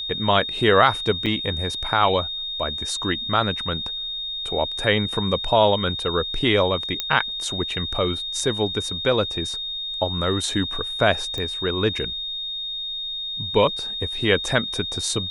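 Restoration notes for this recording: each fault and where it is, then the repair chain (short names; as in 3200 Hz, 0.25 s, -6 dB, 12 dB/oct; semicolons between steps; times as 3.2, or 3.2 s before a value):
tone 3700 Hz -27 dBFS
1.26–1.27 gap 6.6 ms
7 pop -7 dBFS
11.38 pop -16 dBFS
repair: de-click; notch 3700 Hz, Q 30; interpolate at 1.26, 6.6 ms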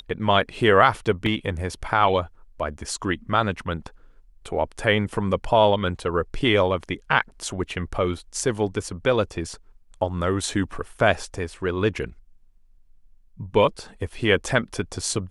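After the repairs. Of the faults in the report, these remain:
none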